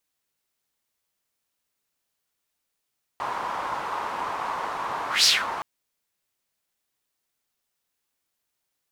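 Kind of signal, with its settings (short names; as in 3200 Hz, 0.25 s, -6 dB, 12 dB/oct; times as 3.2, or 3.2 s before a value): whoosh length 2.42 s, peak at 2.05, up 0.16 s, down 0.23 s, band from 1000 Hz, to 5000 Hz, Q 3.4, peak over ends 13 dB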